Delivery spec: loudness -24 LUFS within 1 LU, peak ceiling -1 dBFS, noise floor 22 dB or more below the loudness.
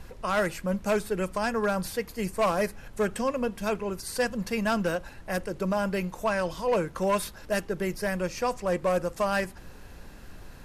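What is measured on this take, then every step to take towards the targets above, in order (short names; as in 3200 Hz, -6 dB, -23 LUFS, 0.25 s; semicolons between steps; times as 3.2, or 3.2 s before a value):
clipped 0.9%; flat tops at -19.0 dBFS; noise floor -47 dBFS; noise floor target -51 dBFS; loudness -29.0 LUFS; peak -19.0 dBFS; loudness target -24.0 LUFS
-> clip repair -19 dBFS; noise print and reduce 6 dB; gain +5 dB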